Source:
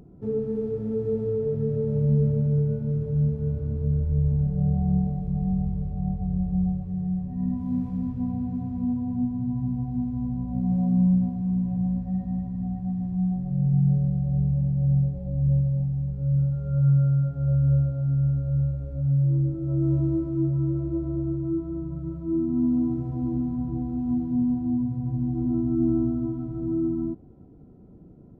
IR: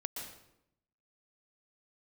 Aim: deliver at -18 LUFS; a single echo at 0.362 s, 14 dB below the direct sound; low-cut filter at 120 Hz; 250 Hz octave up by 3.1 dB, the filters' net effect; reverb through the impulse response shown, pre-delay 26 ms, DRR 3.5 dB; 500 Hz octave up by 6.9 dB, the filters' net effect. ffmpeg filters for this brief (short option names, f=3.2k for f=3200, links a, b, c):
-filter_complex "[0:a]highpass=120,equalizer=f=250:t=o:g=3,equalizer=f=500:t=o:g=7.5,aecho=1:1:362:0.2,asplit=2[a][b];[1:a]atrim=start_sample=2205,adelay=26[c];[b][c]afir=irnorm=-1:irlink=0,volume=-3.5dB[d];[a][d]amix=inputs=2:normalize=0,volume=6dB"